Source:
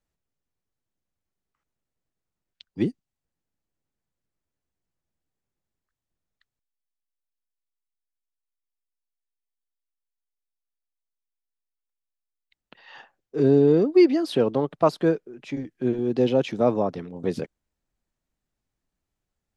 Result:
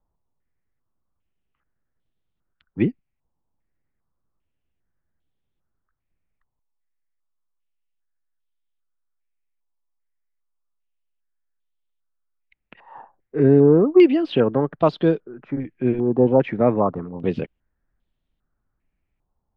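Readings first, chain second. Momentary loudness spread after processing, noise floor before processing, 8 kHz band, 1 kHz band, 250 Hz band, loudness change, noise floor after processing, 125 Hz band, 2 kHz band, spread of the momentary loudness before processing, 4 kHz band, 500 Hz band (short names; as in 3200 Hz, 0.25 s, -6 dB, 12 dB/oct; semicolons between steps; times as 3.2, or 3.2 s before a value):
16 LU, under -85 dBFS, n/a, +3.5 dB, +4.0 dB, +3.5 dB, -77 dBFS, +5.5 dB, +3.5 dB, 16 LU, 0.0 dB, +3.5 dB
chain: tilt -2 dB/oct; stepped low-pass 2.5 Hz 970–3400 Hz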